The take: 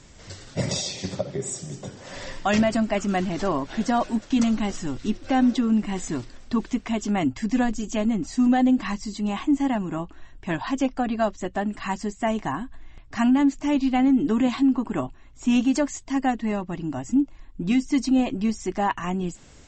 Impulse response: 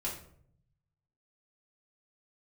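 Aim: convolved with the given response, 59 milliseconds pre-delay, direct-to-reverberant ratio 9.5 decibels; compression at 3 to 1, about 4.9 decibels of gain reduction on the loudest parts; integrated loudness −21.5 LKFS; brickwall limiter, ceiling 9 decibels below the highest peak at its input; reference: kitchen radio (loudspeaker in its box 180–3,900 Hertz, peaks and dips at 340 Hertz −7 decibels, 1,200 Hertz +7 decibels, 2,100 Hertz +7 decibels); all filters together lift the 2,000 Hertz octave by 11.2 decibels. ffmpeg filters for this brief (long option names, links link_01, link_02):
-filter_complex "[0:a]equalizer=frequency=2000:width_type=o:gain=8,acompressor=threshold=-22dB:ratio=3,alimiter=limit=-21.5dB:level=0:latency=1,asplit=2[link_01][link_02];[1:a]atrim=start_sample=2205,adelay=59[link_03];[link_02][link_03]afir=irnorm=-1:irlink=0,volume=-12dB[link_04];[link_01][link_04]amix=inputs=2:normalize=0,highpass=180,equalizer=frequency=340:width_type=q:width=4:gain=-7,equalizer=frequency=1200:width_type=q:width=4:gain=7,equalizer=frequency=2100:width_type=q:width=4:gain=7,lowpass=frequency=3900:width=0.5412,lowpass=frequency=3900:width=1.3066,volume=9dB"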